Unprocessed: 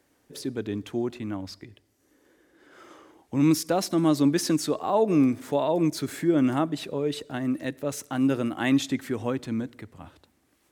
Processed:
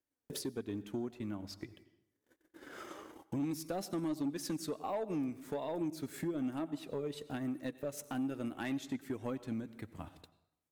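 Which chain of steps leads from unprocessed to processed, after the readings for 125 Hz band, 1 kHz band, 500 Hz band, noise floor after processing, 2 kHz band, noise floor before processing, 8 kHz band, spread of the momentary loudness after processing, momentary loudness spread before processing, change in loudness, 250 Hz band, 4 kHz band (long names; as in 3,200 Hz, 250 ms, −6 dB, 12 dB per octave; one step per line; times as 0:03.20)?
−13.5 dB, −13.5 dB, −13.0 dB, below −85 dBFS, −12.5 dB, −68 dBFS, −12.5 dB, 12 LU, 12 LU, −13.5 dB, −13.0 dB, −13.5 dB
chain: high-shelf EQ 12,000 Hz +10 dB
flanger 1.2 Hz, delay 2.9 ms, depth 2.5 ms, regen +73%
transient designer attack +5 dB, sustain −7 dB
in parallel at −3 dB: brickwall limiter −22 dBFS, peak gain reduction 11.5 dB
on the sum: low-shelf EQ 150 Hz +3.5 dB
noise gate −56 dBFS, range −30 dB
dense smooth reverb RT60 0.76 s, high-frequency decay 0.8×, pre-delay 75 ms, DRR 19 dB
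downward compressor 2 to 1, threshold −47 dBFS, peak gain reduction 17.5 dB
soft clipping −31 dBFS, distortion −17 dB
level +2 dB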